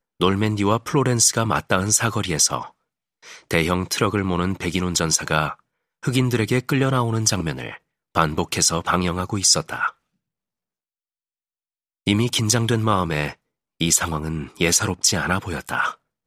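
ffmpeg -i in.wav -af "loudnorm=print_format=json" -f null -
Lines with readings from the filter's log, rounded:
"input_i" : "-20.6",
"input_tp" : "-1.4",
"input_lra" : "2.3",
"input_thresh" : "-31.0",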